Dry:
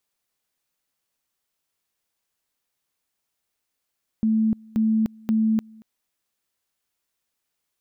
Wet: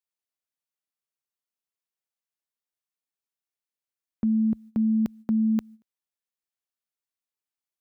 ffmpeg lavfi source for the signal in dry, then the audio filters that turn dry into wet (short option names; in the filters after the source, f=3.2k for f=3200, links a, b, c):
-f lavfi -i "aevalsrc='pow(10,(-17-26.5*gte(mod(t,0.53),0.3))/20)*sin(2*PI*220*t)':d=1.59:s=44100"
-af "highpass=f=43:w=0.5412,highpass=f=43:w=1.3066,agate=range=-15dB:threshold=-40dB:ratio=16:detection=peak,lowshelf=f=140:g=-6.5"